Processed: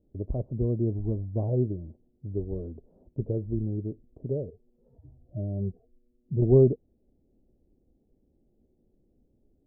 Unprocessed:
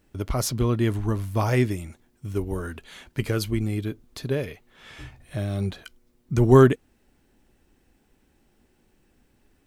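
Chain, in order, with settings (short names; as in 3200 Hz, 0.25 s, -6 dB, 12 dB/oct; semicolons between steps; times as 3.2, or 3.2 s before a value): 4.5–6.42 median-filter separation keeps harmonic; steep low-pass 620 Hz 36 dB/oct; dynamic EQ 270 Hz, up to -5 dB, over -38 dBFS, Q 5; gain -3.5 dB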